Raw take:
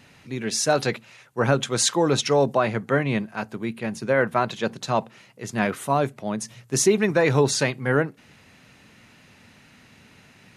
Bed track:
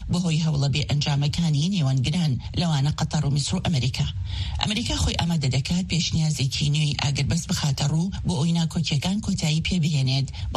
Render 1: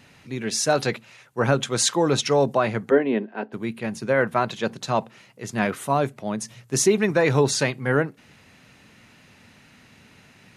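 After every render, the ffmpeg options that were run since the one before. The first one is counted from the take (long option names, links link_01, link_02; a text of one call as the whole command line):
ffmpeg -i in.wav -filter_complex "[0:a]asplit=3[link_01][link_02][link_03];[link_01]afade=type=out:start_time=2.9:duration=0.02[link_04];[link_02]highpass=frequency=230:width=0.5412,highpass=frequency=230:width=1.3066,equalizer=frequency=250:width_type=q:width=4:gain=7,equalizer=frequency=410:width_type=q:width=4:gain=9,equalizer=frequency=1200:width_type=q:width=4:gain=-9,equalizer=frequency=2300:width_type=q:width=4:gain=-7,lowpass=frequency=3100:width=0.5412,lowpass=frequency=3100:width=1.3066,afade=type=in:start_time=2.9:duration=0.02,afade=type=out:start_time=3.52:duration=0.02[link_05];[link_03]afade=type=in:start_time=3.52:duration=0.02[link_06];[link_04][link_05][link_06]amix=inputs=3:normalize=0" out.wav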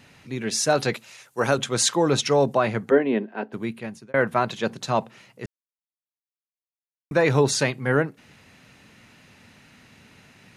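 ffmpeg -i in.wav -filter_complex "[0:a]asettb=1/sr,asplit=3[link_01][link_02][link_03];[link_01]atrim=end=0.944[link_04];[link_02]atrim=start=0.94:end=1.58,asetpts=PTS-STARTPTS,afade=type=in:duration=0.004:curve=qsin,afade=type=out:start_time=0.636:duration=0.004:curve=qsin,bass=frequency=250:gain=-7,treble=frequency=4000:gain=10[link_05];[link_03]atrim=start=1.576[link_06];[link_04][link_05]acrossfade=duration=0.004:curve1=hsin:curve2=qsin[link_07];[link_07][link_06]acrossfade=duration=0.004:curve1=qsin:curve2=hsin,asplit=4[link_08][link_09][link_10][link_11];[link_08]atrim=end=4.14,asetpts=PTS-STARTPTS,afade=type=out:start_time=3.64:duration=0.5[link_12];[link_09]atrim=start=4.14:end=5.46,asetpts=PTS-STARTPTS,afade=type=in:duration=0.004:curve=hsin,afade=type=out:start_time=1.316:duration=0.004:curve=hsin[link_13];[link_10]atrim=start=5.46:end=7.11,asetpts=PTS-STARTPTS,volume=0[link_14];[link_11]atrim=start=7.11,asetpts=PTS-STARTPTS,afade=type=in:duration=0.004:curve=hsin[link_15];[link_12][link_13][link_14][link_15]concat=n=4:v=0:a=1" out.wav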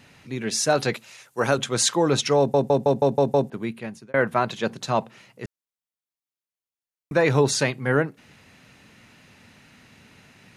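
ffmpeg -i in.wav -filter_complex "[0:a]asplit=8[link_01][link_02][link_03][link_04][link_05][link_06][link_07][link_08];[link_01]atrim=end=2.542[link_09];[link_02]atrim=start=2.378:end=2.542[link_10];[link_03]atrim=start=2.378:end=2.542[link_11];[link_04]atrim=start=2.378:end=2.542[link_12];[link_05]atrim=start=2.378:end=2.542[link_13];[link_06]atrim=start=2.378:end=2.542[link_14];[link_07]atrim=start=2.378:end=2.542[link_15];[link_08]atrim=start=3.498[link_16];[link_09][link_10]acrossfade=duration=0.004:curve1=hsin:curve2=hsin[link_17];[link_17][link_11]acrossfade=duration=0.004:curve1=hsin:curve2=hsin[link_18];[link_18][link_12]acrossfade=duration=0.004:curve1=hsin:curve2=hsin[link_19];[link_19][link_13]acrossfade=duration=0.004:curve1=hsin:curve2=hsin[link_20];[link_20][link_14]acrossfade=duration=0.004:curve1=hsin:curve2=hsin[link_21];[link_21][link_15]acrossfade=duration=0.004:curve1=hsin:curve2=hsin[link_22];[link_22][link_16]acrossfade=duration=0.004:curve1=hsin:curve2=hsin" out.wav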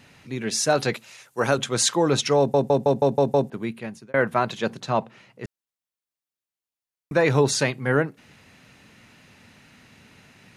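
ffmpeg -i in.wav -filter_complex "[0:a]asettb=1/sr,asplit=3[link_01][link_02][link_03];[link_01]atrim=end=4.804[link_04];[link_02]atrim=start=4.8:end=5.44,asetpts=PTS-STARTPTS,afade=type=in:duration=0.004:curve=qsin,afade=type=out:start_time=0.636:duration=0.004:curve=qsin,highshelf=frequency=6100:gain=-11.5[link_05];[link_03]atrim=start=5.436[link_06];[link_04][link_05]acrossfade=duration=0.004:curve1=hsin:curve2=qsin[link_07];[link_07][link_06]acrossfade=duration=0.004:curve1=qsin:curve2=hsin" out.wav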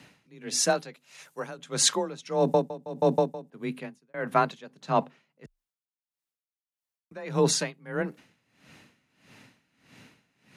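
ffmpeg -i in.wav -af "afreqshift=25,aeval=exprs='val(0)*pow(10,-21*(0.5-0.5*cos(2*PI*1.6*n/s))/20)':channel_layout=same" out.wav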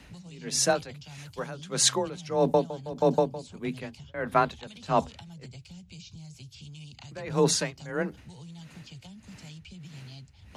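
ffmpeg -i in.wav -i bed.wav -filter_complex "[1:a]volume=-23dB[link_01];[0:a][link_01]amix=inputs=2:normalize=0" out.wav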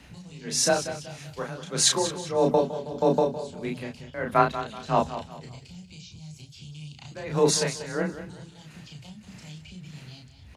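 ffmpeg -i in.wav -filter_complex "[0:a]asplit=2[link_01][link_02];[link_02]adelay=33,volume=-3dB[link_03];[link_01][link_03]amix=inputs=2:normalize=0,aecho=1:1:188|376|564:0.251|0.0829|0.0274" out.wav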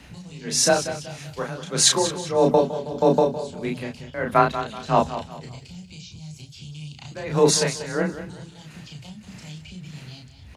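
ffmpeg -i in.wav -af "volume=4dB,alimiter=limit=-3dB:level=0:latency=1" out.wav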